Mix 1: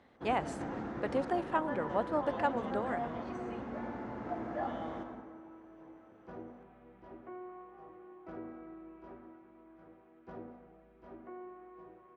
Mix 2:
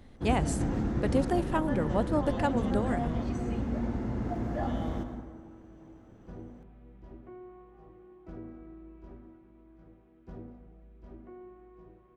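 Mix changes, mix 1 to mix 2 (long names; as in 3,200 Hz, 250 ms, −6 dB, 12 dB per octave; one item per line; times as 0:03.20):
second sound −6.5 dB
master: remove resonant band-pass 1,100 Hz, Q 0.66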